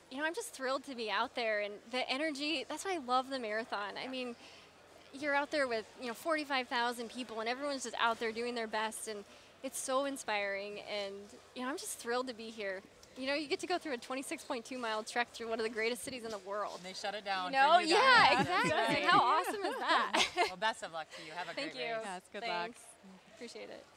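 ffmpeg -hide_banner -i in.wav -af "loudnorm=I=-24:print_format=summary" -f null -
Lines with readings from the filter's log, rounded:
Input Integrated:    -34.7 LUFS
Input True Peak:     -12.6 dBTP
Input LRA:            13.0 LU
Input Threshold:     -45.3 LUFS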